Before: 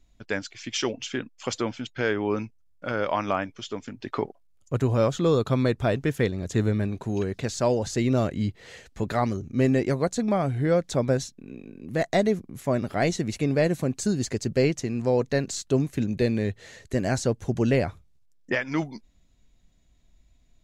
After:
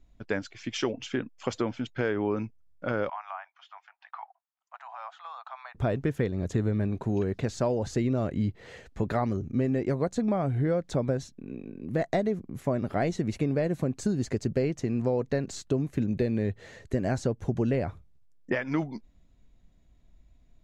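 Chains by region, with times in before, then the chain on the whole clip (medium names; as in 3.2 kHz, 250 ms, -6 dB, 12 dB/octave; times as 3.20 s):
3.09–5.75 s: steep high-pass 730 Hz 72 dB/octave + compression 2:1, threshold -34 dBFS + tape spacing loss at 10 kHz 30 dB
whole clip: treble shelf 2.5 kHz -11.5 dB; compression, threshold -25 dBFS; trim +2 dB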